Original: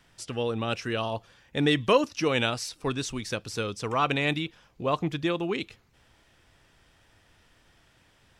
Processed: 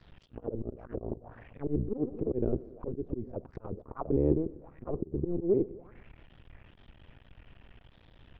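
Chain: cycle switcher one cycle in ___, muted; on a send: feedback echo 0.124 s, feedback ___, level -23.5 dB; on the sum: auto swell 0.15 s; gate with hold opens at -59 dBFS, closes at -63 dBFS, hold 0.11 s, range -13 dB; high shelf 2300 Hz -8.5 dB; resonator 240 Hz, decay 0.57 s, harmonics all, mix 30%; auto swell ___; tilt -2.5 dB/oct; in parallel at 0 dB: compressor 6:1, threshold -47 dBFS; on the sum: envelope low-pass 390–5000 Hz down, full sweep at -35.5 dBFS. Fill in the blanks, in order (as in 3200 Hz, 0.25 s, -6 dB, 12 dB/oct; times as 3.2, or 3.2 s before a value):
2, 56%, 0.171 s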